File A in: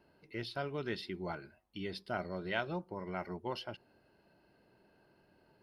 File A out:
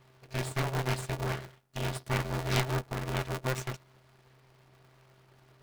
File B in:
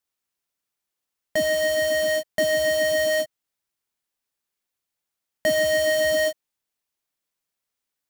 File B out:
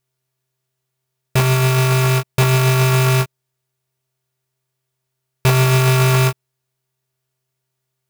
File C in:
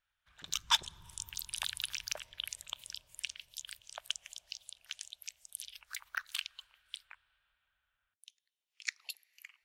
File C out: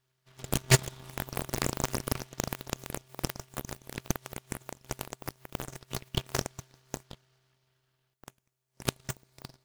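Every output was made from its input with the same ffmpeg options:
-af "aeval=exprs='abs(val(0))':channel_layout=same,aeval=exprs='val(0)*sgn(sin(2*PI*130*n/s))':channel_layout=same,volume=7.5dB"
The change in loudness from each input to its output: +7.0, +6.5, +5.0 LU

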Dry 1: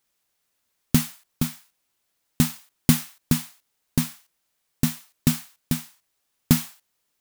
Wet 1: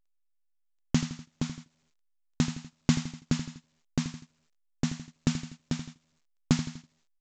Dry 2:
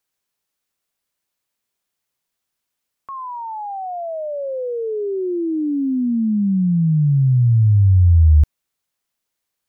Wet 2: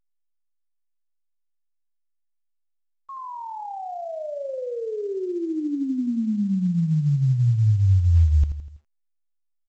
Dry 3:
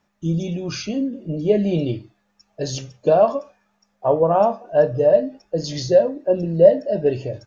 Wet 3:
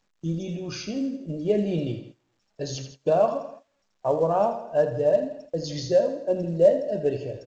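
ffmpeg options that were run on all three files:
-af "aecho=1:1:82|164|246|328|410:0.316|0.158|0.0791|0.0395|0.0198,agate=range=-22dB:threshold=-37dB:ratio=16:detection=peak,volume=-6dB" -ar 16000 -c:a pcm_alaw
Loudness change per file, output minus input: −7.0, −5.5, −5.5 LU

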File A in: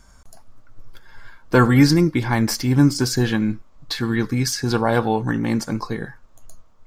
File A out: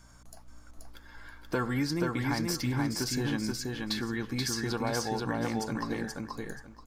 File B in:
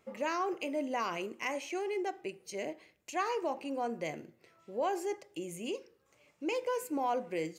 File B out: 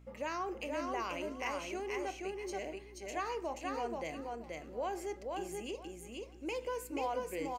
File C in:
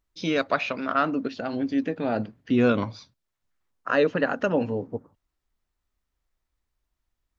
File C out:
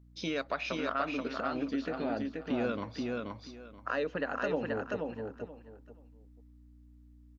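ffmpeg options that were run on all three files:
-filter_complex "[0:a]lowshelf=frequency=210:gain=-6.5,acompressor=threshold=-29dB:ratio=2.5,aeval=exprs='val(0)+0.00224*(sin(2*PI*60*n/s)+sin(2*PI*2*60*n/s)/2+sin(2*PI*3*60*n/s)/3+sin(2*PI*4*60*n/s)/4+sin(2*PI*5*60*n/s)/5)':channel_layout=same,asplit=2[link_01][link_02];[link_02]aecho=0:1:480|960|1440:0.708|0.149|0.0312[link_03];[link_01][link_03]amix=inputs=2:normalize=0,volume=-3.5dB"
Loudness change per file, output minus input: −12.5, −3.5, −9.5 LU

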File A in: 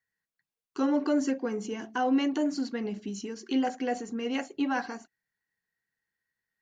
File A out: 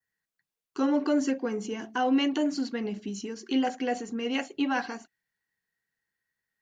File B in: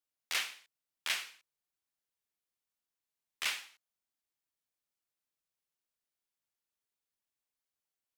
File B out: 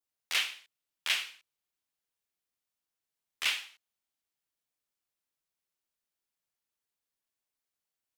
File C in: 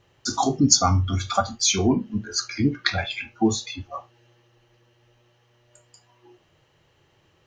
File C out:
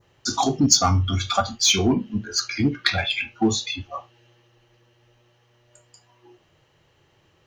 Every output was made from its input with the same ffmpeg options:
-filter_complex "[0:a]adynamicequalizer=threshold=0.00631:dfrequency=3000:dqfactor=1.5:tfrequency=3000:tqfactor=1.5:attack=5:release=100:ratio=0.375:range=3.5:mode=boostabove:tftype=bell,asplit=2[link_01][link_02];[link_02]asoftclip=type=hard:threshold=-18dB,volume=-8dB[link_03];[link_01][link_03]amix=inputs=2:normalize=0,volume=-2dB"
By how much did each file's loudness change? +1.0, +4.5, +1.0 LU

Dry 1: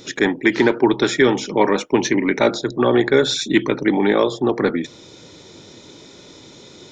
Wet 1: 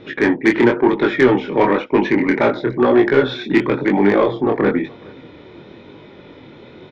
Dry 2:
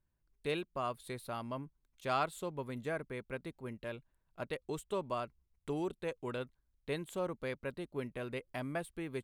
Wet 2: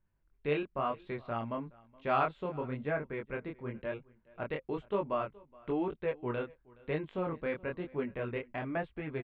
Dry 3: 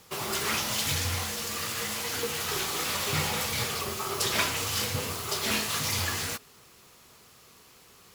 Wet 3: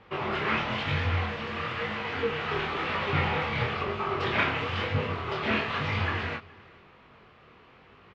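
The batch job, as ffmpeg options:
-filter_complex "[0:a]lowpass=frequency=2700:width=0.5412,lowpass=frequency=2700:width=1.3066,acontrast=77,flanger=delay=19.5:depth=7.5:speed=1,asplit=2[link_01][link_02];[link_02]aecho=0:1:421:0.0631[link_03];[link_01][link_03]amix=inputs=2:normalize=0"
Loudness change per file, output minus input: +2.0, +4.0, −0.5 LU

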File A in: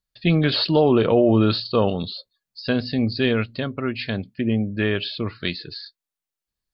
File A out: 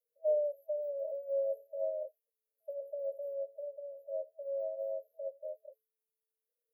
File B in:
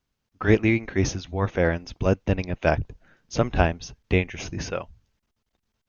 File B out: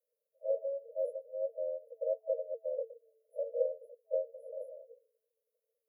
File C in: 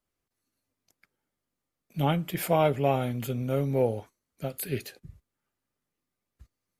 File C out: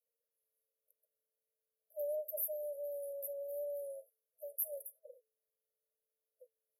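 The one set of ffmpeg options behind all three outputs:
-af "afftfilt=real='re*(1-between(b*sr/4096,210,9300))':imag='im*(1-between(b*sr/4096,210,9300))':win_size=4096:overlap=0.75,lowshelf=frequency=240:width_type=q:width=1.5:gain=-8,afreqshift=440"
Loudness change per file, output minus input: −16.5, −13.0, −12.5 LU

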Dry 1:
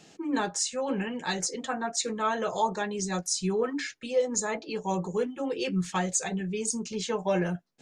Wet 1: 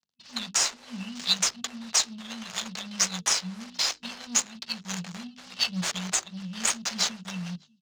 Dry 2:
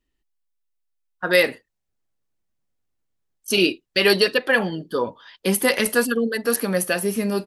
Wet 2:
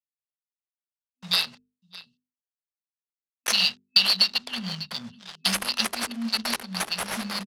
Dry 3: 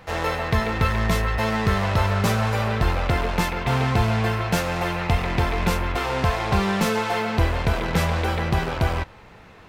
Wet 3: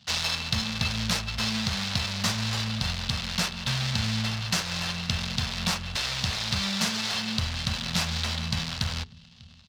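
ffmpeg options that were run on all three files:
-filter_complex "[0:a]acrusher=bits=6:mix=0:aa=0.5,aexciter=amount=5.3:drive=8.4:freq=4300,highpass=75,asplit=2[link_01][link_02];[link_02]aecho=0:1:596:0.075[link_03];[link_01][link_03]amix=inputs=2:normalize=0,acompressor=threshold=-17dB:ratio=6,afftfilt=real='re*(1-between(b*sr/4096,250,2600))':imag='im*(1-between(b*sr/4096,250,2600))':win_size=4096:overlap=0.75,adynamicsmooth=sensitivity=5.5:basefreq=1400,acrossover=split=450 4500:gain=0.224 1 0.141[link_04][link_05][link_06];[link_04][link_05][link_06]amix=inputs=3:normalize=0,bandreject=frequency=50:width_type=h:width=6,bandreject=frequency=100:width_type=h:width=6,bandreject=frequency=150:width_type=h:width=6,bandreject=frequency=200:width_type=h:width=6,bandreject=frequency=250:width_type=h:width=6,bandreject=frequency=300:width_type=h:width=6,bandreject=frequency=350:width_type=h:width=6,bandreject=frequency=400:width_type=h:width=6,bandreject=frequency=450:width_type=h:width=6,adynamicequalizer=threshold=0.00355:dfrequency=2400:dqfactor=0.7:tfrequency=2400:tqfactor=0.7:attack=5:release=100:ratio=0.375:range=2:mode=cutabove:tftype=highshelf,volume=9dB"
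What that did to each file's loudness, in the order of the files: +2.0, −3.5, −4.5 LU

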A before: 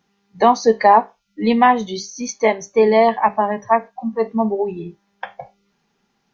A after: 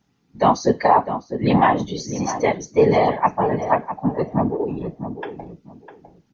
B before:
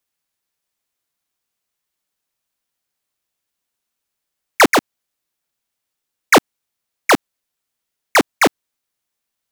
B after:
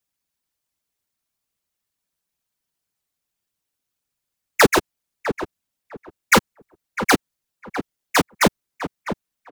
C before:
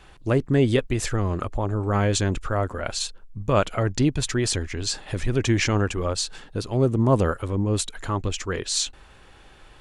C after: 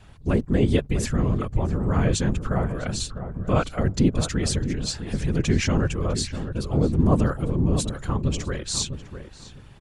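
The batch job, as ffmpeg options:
-filter_complex "[0:a]bass=frequency=250:gain=7,treble=frequency=4000:gain=2,afftfilt=real='hypot(re,im)*cos(2*PI*random(0))':imag='hypot(re,im)*sin(2*PI*random(1))':win_size=512:overlap=0.75,asplit=2[link_01][link_02];[link_02]adelay=653,lowpass=frequency=1300:poles=1,volume=-9dB,asplit=2[link_03][link_04];[link_04]adelay=653,lowpass=frequency=1300:poles=1,volume=0.21,asplit=2[link_05][link_06];[link_06]adelay=653,lowpass=frequency=1300:poles=1,volume=0.21[link_07];[link_03][link_05][link_07]amix=inputs=3:normalize=0[link_08];[link_01][link_08]amix=inputs=2:normalize=0,volume=2dB"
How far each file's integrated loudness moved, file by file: −3.0, −5.5, 0.0 LU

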